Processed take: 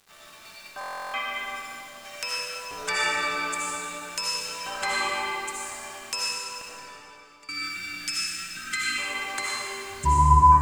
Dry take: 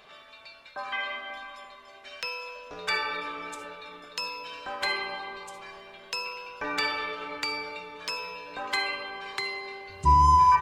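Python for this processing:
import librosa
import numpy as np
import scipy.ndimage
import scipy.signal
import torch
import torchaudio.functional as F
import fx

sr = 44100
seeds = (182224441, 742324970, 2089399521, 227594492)

y = fx.graphic_eq_10(x, sr, hz=(500, 4000, 8000), db=(-5, -9, 8))
y = fx.spec_erase(y, sr, start_s=7.41, length_s=1.57, low_hz=370.0, high_hz=1200.0)
y = fx.env_lowpass_down(y, sr, base_hz=1200.0, full_db=-21.0)
y = fx.high_shelf(y, sr, hz=5700.0, db=11.0)
y = np.where(np.abs(y) >= 10.0 ** (-49.0 / 20.0), y, 0.0)
y = fx.gate_flip(y, sr, shuts_db=-31.0, range_db=-24, at=(6.24, 7.49))
y = fx.rev_freeverb(y, sr, rt60_s=2.2, hf_ratio=0.95, predelay_ms=40, drr_db=-6.0)
y = fx.buffer_glitch(y, sr, at_s=(0.79,), block=1024, repeats=14)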